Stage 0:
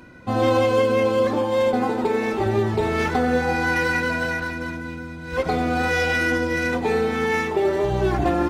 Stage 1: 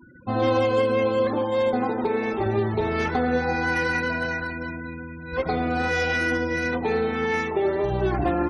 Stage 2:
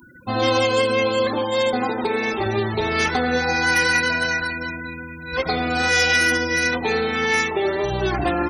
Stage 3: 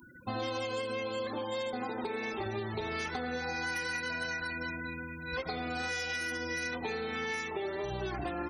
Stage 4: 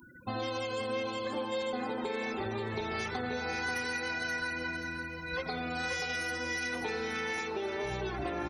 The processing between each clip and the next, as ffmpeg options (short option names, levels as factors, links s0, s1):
-af "afftfilt=real='re*gte(hypot(re,im),0.0158)':imag='im*gte(hypot(re,im),0.0158)':win_size=1024:overlap=0.75,volume=0.75"
-af "crystalizer=i=7.5:c=0"
-af "acompressor=threshold=0.0501:ratio=6,volume=0.447"
-af "aecho=1:1:531|1062|1593|2124:0.447|0.152|0.0516|0.0176"